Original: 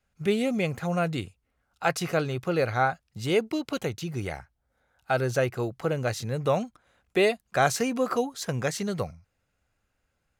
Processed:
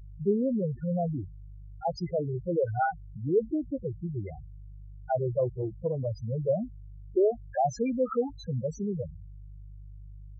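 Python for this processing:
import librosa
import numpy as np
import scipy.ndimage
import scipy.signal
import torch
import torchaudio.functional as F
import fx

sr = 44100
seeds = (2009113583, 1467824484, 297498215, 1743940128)

y = fx.dmg_buzz(x, sr, base_hz=50.0, harmonics=7, level_db=-43.0, tilt_db=-4, odd_only=False)
y = fx.spec_topn(y, sr, count=4)
y = fx.doppler_dist(y, sr, depth_ms=0.14, at=(5.39, 6.06))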